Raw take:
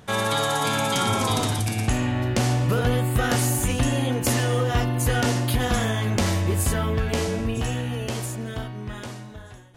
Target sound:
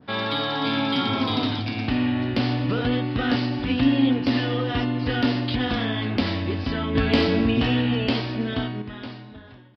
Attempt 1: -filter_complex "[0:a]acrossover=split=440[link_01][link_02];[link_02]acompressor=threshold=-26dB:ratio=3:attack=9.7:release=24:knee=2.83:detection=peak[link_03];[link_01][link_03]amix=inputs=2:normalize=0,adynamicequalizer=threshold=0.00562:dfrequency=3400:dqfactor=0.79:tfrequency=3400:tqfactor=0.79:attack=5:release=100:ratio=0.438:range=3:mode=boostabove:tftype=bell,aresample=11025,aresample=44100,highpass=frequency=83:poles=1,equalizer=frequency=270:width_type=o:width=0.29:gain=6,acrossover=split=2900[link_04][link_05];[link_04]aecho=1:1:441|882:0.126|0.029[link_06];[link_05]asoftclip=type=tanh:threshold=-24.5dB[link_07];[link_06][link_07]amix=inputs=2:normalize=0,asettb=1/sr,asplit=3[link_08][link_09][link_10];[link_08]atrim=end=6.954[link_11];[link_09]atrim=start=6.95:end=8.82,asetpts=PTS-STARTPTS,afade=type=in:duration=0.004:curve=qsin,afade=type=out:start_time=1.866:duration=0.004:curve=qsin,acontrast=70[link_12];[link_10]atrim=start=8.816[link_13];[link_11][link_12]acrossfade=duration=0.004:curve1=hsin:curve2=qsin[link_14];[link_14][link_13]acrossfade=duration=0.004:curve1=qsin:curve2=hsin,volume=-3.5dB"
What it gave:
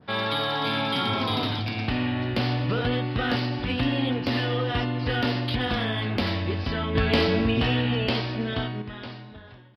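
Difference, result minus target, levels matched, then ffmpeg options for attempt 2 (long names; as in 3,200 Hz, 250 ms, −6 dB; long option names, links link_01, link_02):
soft clipping: distortion +13 dB; 250 Hz band −3.0 dB
-filter_complex "[0:a]acrossover=split=440[link_01][link_02];[link_02]acompressor=threshold=-26dB:ratio=3:attack=9.7:release=24:knee=2.83:detection=peak[link_03];[link_01][link_03]amix=inputs=2:normalize=0,adynamicequalizer=threshold=0.00562:dfrequency=3400:dqfactor=0.79:tfrequency=3400:tqfactor=0.79:attack=5:release=100:ratio=0.438:range=3:mode=boostabove:tftype=bell,aresample=11025,aresample=44100,highpass=frequency=83:poles=1,equalizer=frequency=270:width_type=o:width=0.29:gain=15.5,acrossover=split=2900[link_04][link_05];[link_04]aecho=1:1:441|882:0.126|0.029[link_06];[link_05]asoftclip=type=tanh:threshold=-16dB[link_07];[link_06][link_07]amix=inputs=2:normalize=0,asettb=1/sr,asplit=3[link_08][link_09][link_10];[link_08]atrim=end=6.954[link_11];[link_09]atrim=start=6.95:end=8.82,asetpts=PTS-STARTPTS,afade=type=in:duration=0.004:curve=qsin,afade=type=out:start_time=1.866:duration=0.004:curve=qsin,acontrast=70[link_12];[link_10]atrim=start=8.816[link_13];[link_11][link_12]acrossfade=duration=0.004:curve1=hsin:curve2=qsin[link_14];[link_14][link_13]acrossfade=duration=0.004:curve1=qsin:curve2=hsin,volume=-3.5dB"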